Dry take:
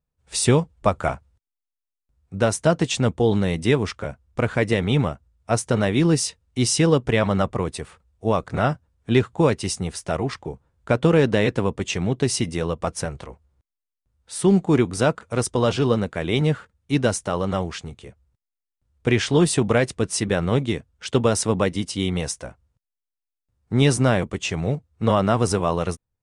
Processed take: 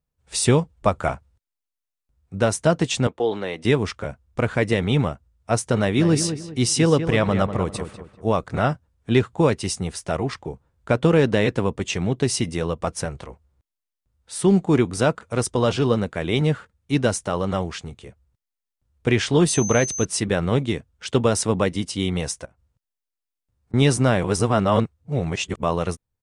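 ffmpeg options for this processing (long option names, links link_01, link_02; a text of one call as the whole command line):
ffmpeg -i in.wav -filter_complex "[0:a]asettb=1/sr,asplit=3[link_01][link_02][link_03];[link_01]atrim=end=3.074[link_04];[link_02]atrim=start=3.07:end=3.65,asetpts=PTS-STARTPTS,afade=type=in:duration=0.004:curve=qsin,afade=type=out:start_time=0.576:duration=0.004:curve=qsin,acrossover=split=320 4300:gain=0.112 1 0.224[link_05][link_06][link_07];[link_05][link_06][link_07]amix=inputs=3:normalize=0[link_08];[link_03]atrim=start=3.646[link_09];[link_04][link_08]acrossfade=duration=0.004:curve1=hsin:curve2=qsin[link_10];[link_10][link_09]acrossfade=duration=0.004:curve1=qsin:curve2=hsin,asplit=3[link_11][link_12][link_13];[link_11]afade=type=out:start_time=5.97:duration=0.02[link_14];[link_12]asplit=2[link_15][link_16];[link_16]adelay=195,lowpass=frequency=2200:poles=1,volume=-9dB,asplit=2[link_17][link_18];[link_18]adelay=195,lowpass=frequency=2200:poles=1,volume=0.34,asplit=2[link_19][link_20];[link_20]adelay=195,lowpass=frequency=2200:poles=1,volume=0.34,asplit=2[link_21][link_22];[link_22]adelay=195,lowpass=frequency=2200:poles=1,volume=0.34[link_23];[link_15][link_17][link_19][link_21][link_23]amix=inputs=5:normalize=0,afade=type=in:start_time=5.97:duration=0.02,afade=type=out:start_time=8.32:duration=0.02[link_24];[link_13]afade=type=in:start_time=8.32:duration=0.02[link_25];[link_14][link_24][link_25]amix=inputs=3:normalize=0,asettb=1/sr,asplit=3[link_26][link_27][link_28];[link_26]atrim=end=19.484[link_29];[link_27]atrim=start=19.48:end=20.05,asetpts=PTS-STARTPTS,afade=type=in:duration=0.004:curve=qsin,afade=type=out:start_time=0.566:duration=0.004:curve=qsin,aeval=exprs='val(0)+0.0447*sin(2*PI*6200*n/s)':channel_layout=same[link_30];[link_28]atrim=start=20.046[link_31];[link_29][link_30]acrossfade=duration=0.004:curve1=hsin:curve2=qsin[link_32];[link_32][link_31]acrossfade=duration=0.004:curve1=qsin:curve2=hsin,asettb=1/sr,asplit=3[link_33][link_34][link_35];[link_33]atrim=end=22.454[link_36];[link_34]atrim=start=22.45:end=23.74,asetpts=PTS-STARTPTS,afade=type=in:duration=0.004:curve=qsin,afade=type=out:start_time=1.286:duration=0.004:curve=qsin,acompressor=threshold=-52dB:ratio=6:attack=3.2:release=140:knee=1:detection=peak[link_37];[link_35]atrim=start=23.736[link_38];[link_36][link_37]acrossfade=duration=0.004:curve1=hsin:curve2=qsin[link_39];[link_39][link_38]acrossfade=duration=0.004:curve1=qsin:curve2=hsin,asplit=3[link_40][link_41][link_42];[link_40]atrim=end=24.242[link_43];[link_41]atrim=start=24.238:end=25.632,asetpts=PTS-STARTPTS,areverse[link_44];[link_42]atrim=start=25.628[link_45];[link_43][link_44]acrossfade=duration=0.004:curve1=hsin:curve2=hsin[link_46];[link_46][link_45]acrossfade=duration=0.004:curve1=hsin:curve2=hsin" out.wav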